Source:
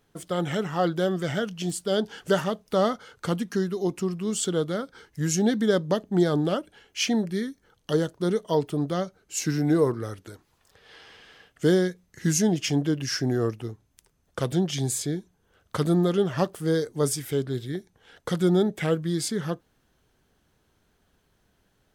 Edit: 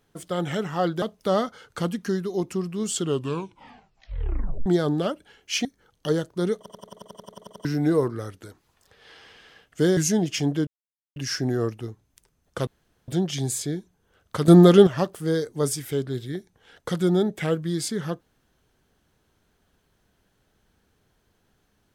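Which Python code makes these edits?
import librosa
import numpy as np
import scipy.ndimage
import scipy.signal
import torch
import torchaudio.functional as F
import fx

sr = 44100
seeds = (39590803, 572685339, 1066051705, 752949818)

y = fx.edit(x, sr, fx.cut(start_s=1.02, length_s=1.47),
    fx.tape_stop(start_s=4.41, length_s=1.72),
    fx.cut(start_s=7.12, length_s=0.37),
    fx.stutter_over(start_s=8.41, slice_s=0.09, count=12),
    fx.cut(start_s=11.81, length_s=0.46),
    fx.insert_silence(at_s=12.97, length_s=0.49),
    fx.insert_room_tone(at_s=14.48, length_s=0.41),
    fx.clip_gain(start_s=15.88, length_s=0.39, db=10.0), tone=tone)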